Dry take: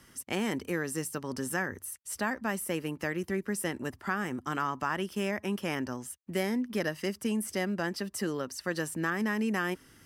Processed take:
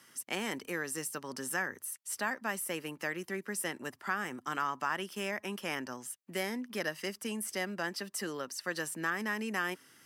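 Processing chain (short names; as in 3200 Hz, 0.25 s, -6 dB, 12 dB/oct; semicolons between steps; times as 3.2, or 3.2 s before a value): HPF 120 Hz 24 dB/oct; low shelf 450 Hz -10.5 dB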